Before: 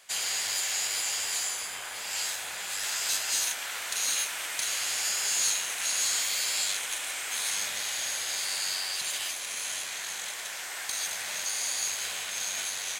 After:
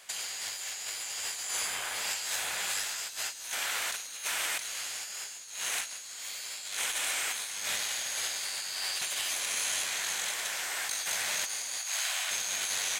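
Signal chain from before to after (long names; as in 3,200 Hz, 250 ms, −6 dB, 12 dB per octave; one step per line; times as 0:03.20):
0:11.78–0:12.31: Chebyshev high-pass filter 630 Hz, order 4
compressor whose output falls as the input rises −34 dBFS, ratio −0.5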